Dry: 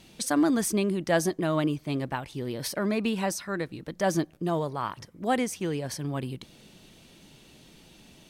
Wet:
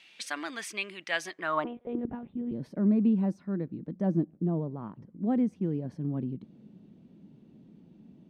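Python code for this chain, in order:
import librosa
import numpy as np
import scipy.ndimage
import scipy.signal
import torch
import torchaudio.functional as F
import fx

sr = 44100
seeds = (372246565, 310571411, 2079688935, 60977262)

y = fx.lpc_monotone(x, sr, seeds[0], pitch_hz=240.0, order=8, at=(1.65, 2.52))
y = fx.filter_sweep_bandpass(y, sr, from_hz=2400.0, to_hz=210.0, start_s=1.3, end_s=2.14, q=2.1)
y = fx.high_shelf(y, sr, hz=2700.0, db=-9.0, at=(4.07, 5.07))
y = y * librosa.db_to_amplitude(5.5)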